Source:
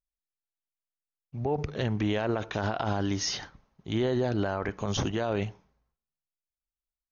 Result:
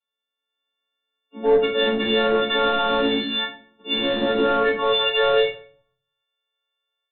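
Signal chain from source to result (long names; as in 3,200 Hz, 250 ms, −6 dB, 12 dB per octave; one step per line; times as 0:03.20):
every partial snapped to a pitch grid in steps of 4 semitones
Butterworth high-pass 200 Hz 96 dB per octave, from 0:04.74 430 Hz
brickwall limiter −23.5 dBFS, peak gain reduction 11.5 dB
automatic gain control gain up to 7 dB
transient designer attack −2 dB, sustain −7 dB
soft clipping −21 dBFS, distortion −17 dB
linear-phase brick-wall low-pass 4,200 Hz
rectangular room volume 39 cubic metres, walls mixed, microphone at 1.7 metres
level −3 dB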